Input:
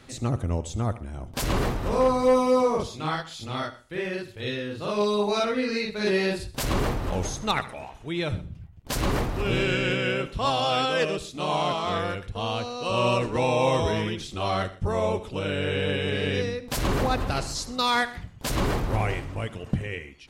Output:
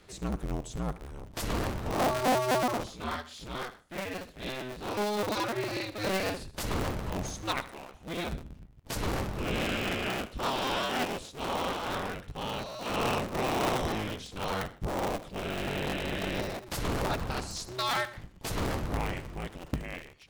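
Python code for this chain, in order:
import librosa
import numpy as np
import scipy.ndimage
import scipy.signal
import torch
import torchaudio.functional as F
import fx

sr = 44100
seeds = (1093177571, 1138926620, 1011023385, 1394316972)

y = fx.cycle_switch(x, sr, every=2, mode='inverted')
y = F.gain(torch.from_numpy(y), -6.5).numpy()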